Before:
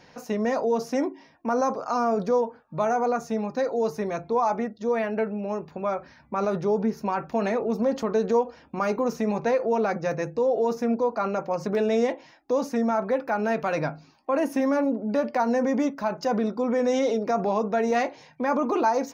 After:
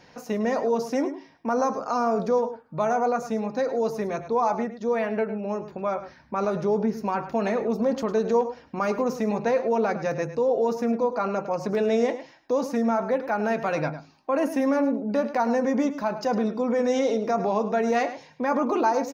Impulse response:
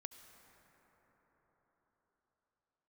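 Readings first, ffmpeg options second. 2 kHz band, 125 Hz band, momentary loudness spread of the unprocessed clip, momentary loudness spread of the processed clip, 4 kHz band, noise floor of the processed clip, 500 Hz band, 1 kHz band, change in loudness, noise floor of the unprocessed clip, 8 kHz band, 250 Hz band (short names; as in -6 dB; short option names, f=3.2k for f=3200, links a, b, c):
+0.5 dB, +0.5 dB, 6 LU, 6 LU, 0.0 dB, -54 dBFS, +0.5 dB, +0.5 dB, +0.5 dB, -55 dBFS, n/a, +0.5 dB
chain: -filter_complex "[0:a]asplit=2[a][b];[b]adelay=105,volume=-12dB,highshelf=f=4k:g=-2.36[c];[a][c]amix=inputs=2:normalize=0"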